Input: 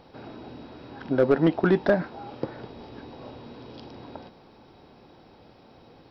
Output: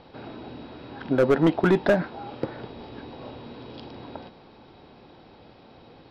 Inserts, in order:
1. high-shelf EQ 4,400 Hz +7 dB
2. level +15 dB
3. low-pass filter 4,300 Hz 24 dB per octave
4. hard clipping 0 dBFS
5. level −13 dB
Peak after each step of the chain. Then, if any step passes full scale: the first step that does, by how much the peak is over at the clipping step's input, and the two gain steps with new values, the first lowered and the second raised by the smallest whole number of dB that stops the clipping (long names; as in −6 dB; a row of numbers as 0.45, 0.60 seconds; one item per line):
−11.0, +4.0, +4.0, 0.0, −13.0 dBFS
step 2, 4.0 dB
step 2 +11 dB, step 5 −9 dB